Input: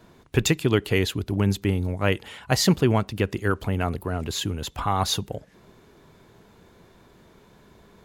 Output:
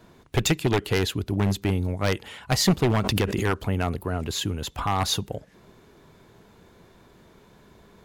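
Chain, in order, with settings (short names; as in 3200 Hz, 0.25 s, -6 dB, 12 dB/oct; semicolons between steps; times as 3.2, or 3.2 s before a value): one-sided fold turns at -14.5 dBFS; 2.99–3.58 backwards sustainer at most 30 dB/s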